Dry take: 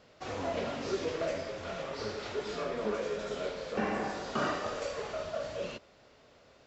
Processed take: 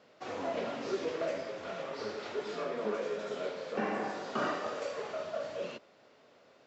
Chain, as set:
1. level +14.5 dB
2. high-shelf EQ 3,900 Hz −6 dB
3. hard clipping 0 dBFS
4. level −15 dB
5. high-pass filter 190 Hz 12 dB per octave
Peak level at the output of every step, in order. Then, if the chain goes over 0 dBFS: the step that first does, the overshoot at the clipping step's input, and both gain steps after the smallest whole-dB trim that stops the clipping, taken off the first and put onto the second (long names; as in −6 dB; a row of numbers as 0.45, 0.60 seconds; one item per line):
−4.5, −5.0, −5.0, −20.0, −20.0 dBFS
no step passes full scale